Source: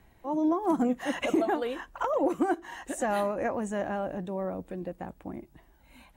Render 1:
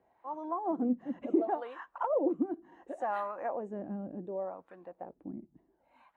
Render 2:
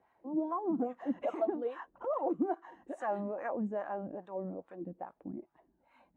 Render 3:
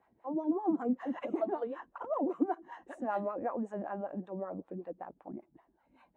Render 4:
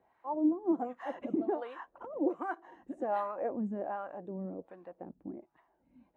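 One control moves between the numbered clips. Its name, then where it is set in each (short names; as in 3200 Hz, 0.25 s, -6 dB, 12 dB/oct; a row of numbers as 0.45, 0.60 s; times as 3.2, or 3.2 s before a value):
wah, rate: 0.69, 2.4, 5.2, 1.3 Hz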